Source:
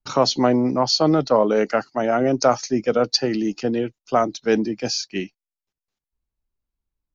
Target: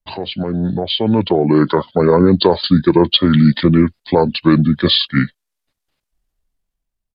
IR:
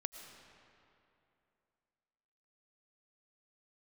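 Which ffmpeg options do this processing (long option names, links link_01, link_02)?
-af "alimiter=limit=-14dB:level=0:latency=1:release=238,dynaudnorm=framelen=450:gausssize=5:maxgain=13dB,asetrate=31183,aresample=44100,atempo=1.41421,volume=1.5dB"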